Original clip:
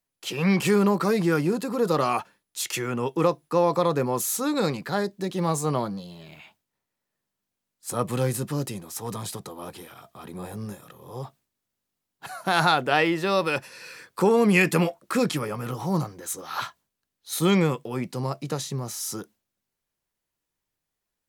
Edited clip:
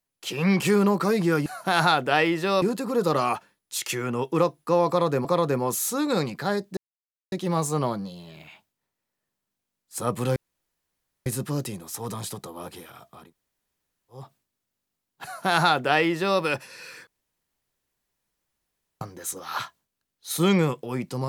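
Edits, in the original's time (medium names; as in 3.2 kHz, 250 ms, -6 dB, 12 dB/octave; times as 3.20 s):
3.72–4.09 s: loop, 2 plays
5.24 s: insert silence 0.55 s
8.28 s: insert room tone 0.90 s
10.23–11.22 s: room tone, crossfade 0.24 s
12.26–13.42 s: copy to 1.46 s
14.09–16.03 s: room tone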